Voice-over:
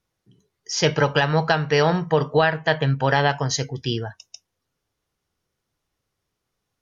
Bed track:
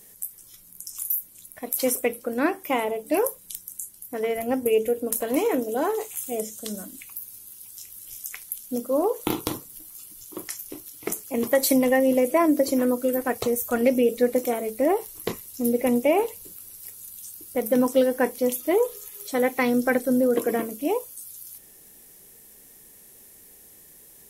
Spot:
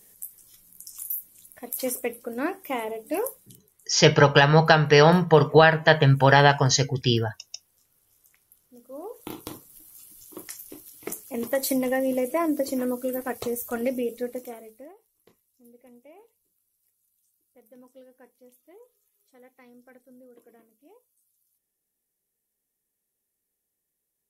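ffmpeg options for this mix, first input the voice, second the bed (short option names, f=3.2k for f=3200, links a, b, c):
-filter_complex "[0:a]adelay=3200,volume=3dB[a];[1:a]volume=15dB,afade=t=out:st=3.32:d=0.26:silence=0.1,afade=t=in:st=8.72:d=1.4:silence=0.1,afade=t=out:st=13.66:d=1.28:silence=0.0501187[b];[a][b]amix=inputs=2:normalize=0"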